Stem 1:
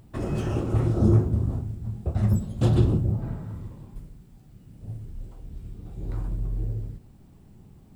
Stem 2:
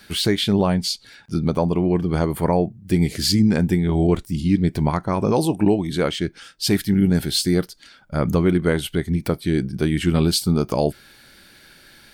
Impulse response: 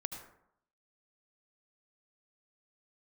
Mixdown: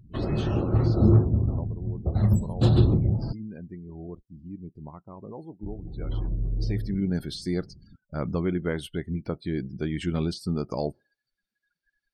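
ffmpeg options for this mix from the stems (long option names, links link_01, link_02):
-filter_complex "[0:a]equalizer=frequency=4100:width=4.2:gain=10,volume=1dB,asplit=3[link_01][link_02][link_03];[link_01]atrim=end=3.33,asetpts=PTS-STARTPTS,afade=type=out:start_time=3.326:duration=0.004:curve=hsin[link_04];[link_02]atrim=start=3.33:end=5.63,asetpts=PTS-STARTPTS,volume=0[link_05];[link_03]atrim=start=5.63,asetpts=PTS-STARTPTS,afade=type=in:duration=0.004:curve=hsin[link_06];[link_04][link_05][link_06]concat=n=3:v=0:a=1[link_07];[1:a]deesser=0.5,equalizer=frequency=5700:width=2:gain=5,volume=-9dB,afade=type=in:start_time=6.47:duration=0.62:silence=0.237137[link_08];[link_07][link_08]amix=inputs=2:normalize=0,afftdn=noise_reduction=36:noise_floor=-45"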